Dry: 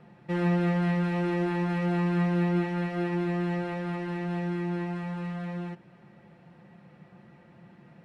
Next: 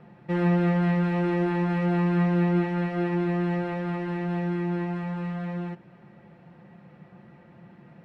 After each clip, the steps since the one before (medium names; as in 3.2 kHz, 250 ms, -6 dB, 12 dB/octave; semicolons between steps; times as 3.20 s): treble shelf 4.3 kHz -9.5 dB; trim +3 dB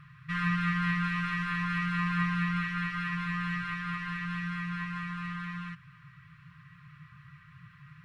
brick-wall FIR band-stop 160–1000 Hz; trim +4.5 dB